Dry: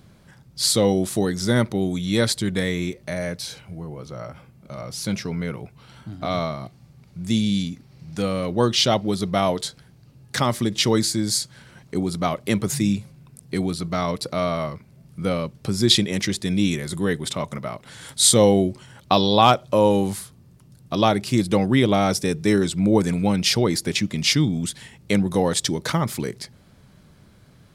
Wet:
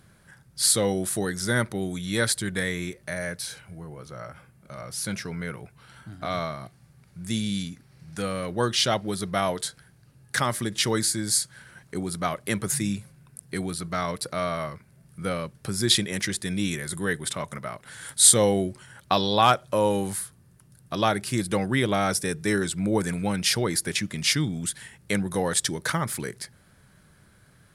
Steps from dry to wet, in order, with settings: fifteen-band EQ 250 Hz -3 dB, 1600 Hz +9 dB, 10000 Hz +11 dB; gain -5.5 dB

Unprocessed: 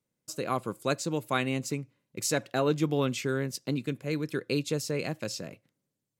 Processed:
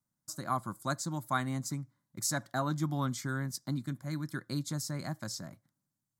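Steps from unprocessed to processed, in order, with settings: fixed phaser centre 1100 Hz, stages 4

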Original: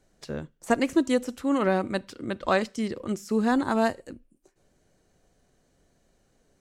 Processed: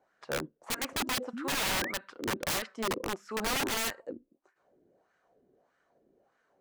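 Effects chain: wah 1.6 Hz 320–1500 Hz, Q 2.5; painted sound rise, 1.33–1.92, 210–2300 Hz -45 dBFS; wrapped overs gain 32.5 dB; gain +7 dB

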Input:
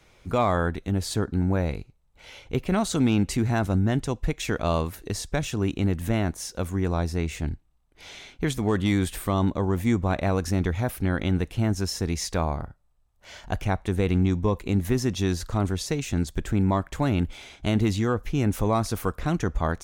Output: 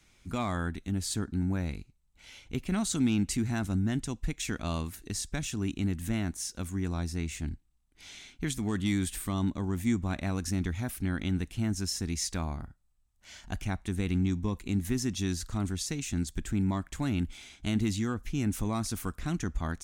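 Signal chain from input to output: ten-band EQ 125 Hz -3 dB, 250 Hz +4 dB, 500 Hz -11 dB, 1000 Hz -4 dB, 8000 Hz +6 dB; gain -5 dB

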